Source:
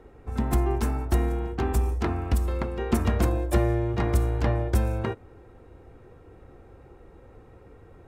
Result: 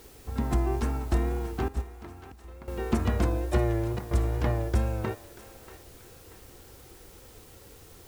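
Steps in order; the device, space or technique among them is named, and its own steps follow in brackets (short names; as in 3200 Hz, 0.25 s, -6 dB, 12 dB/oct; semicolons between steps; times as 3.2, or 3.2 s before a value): worn cassette (LPF 8000 Hz; wow and flutter; level dips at 2.32/3.99, 0.119 s -12 dB; white noise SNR 26 dB); 1.68–2.68 gate -20 dBFS, range -15 dB; thinning echo 0.635 s, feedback 45%, high-pass 770 Hz, level -13 dB; gain -2.5 dB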